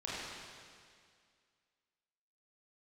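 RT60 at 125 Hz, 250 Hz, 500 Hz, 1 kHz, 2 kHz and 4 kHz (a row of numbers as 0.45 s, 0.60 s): 2.0 s, 2.1 s, 2.1 s, 2.1 s, 2.1 s, 2.1 s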